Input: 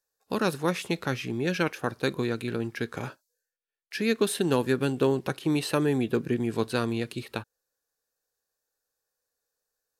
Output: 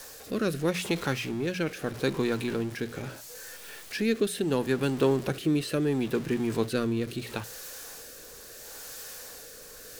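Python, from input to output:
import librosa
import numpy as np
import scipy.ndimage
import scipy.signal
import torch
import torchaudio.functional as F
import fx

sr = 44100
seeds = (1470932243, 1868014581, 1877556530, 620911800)

y = x + 0.5 * 10.0 ** (-34.0 / 20.0) * np.sign(x)
y = fx.rotary(y, sr, hz=0.75)
y = fx.hum_notches(y, sr, base_hz=60, count=3)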